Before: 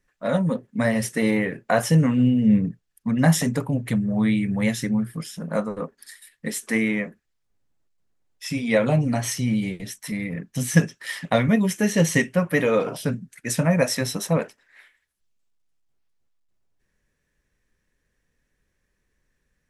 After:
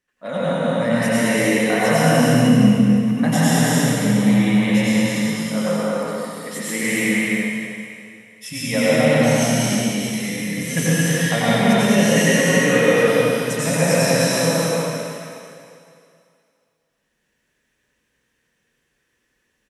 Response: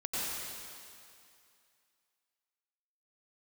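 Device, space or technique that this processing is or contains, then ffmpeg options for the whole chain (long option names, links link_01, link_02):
stadium PA: -filter_complex "[0:a]asettb=1/sr,asplit=3[link_01][link_02][link_03];[link_01]atrim=end=6.834[link_04];[link_02]atrim=start=6.83:end=8.69,asetpts=PTS-STARTPTS,afade=type=in:duration=0.004:curve=qsin,afade=type=out:start_time=1.856:duration=0.004:curve=qsin,equalizer=frequency=100:width_type=o:width=0.67:gain=11,equalizer=frequency=400:width_type=o:width=0.67:gain=-6,equalizer=frequency=10000:width_type=o:width=0.67:gain=9[link_05];[link_03]atrim=start=8.686[link_06];[link_04][link_05]acrossfade=duration=0.004:curve1=hsin:curve2=qsin[link_07];[link_07][link_06]acrossfade=duration=0.004:curve1=qsin:curve2=hsin,highpass=frequency=220:poles=1,equalizer=frequency=3000:width_type=o:width=0.37:gain=6.5,aecho=1:1:218.7|282.8:0.708|0.562[link_08];[1:a]atrim=start_sample=2205[link_09];[link_08][link_09]afir=irnorm=-1:irlink=0,volume=-1dB"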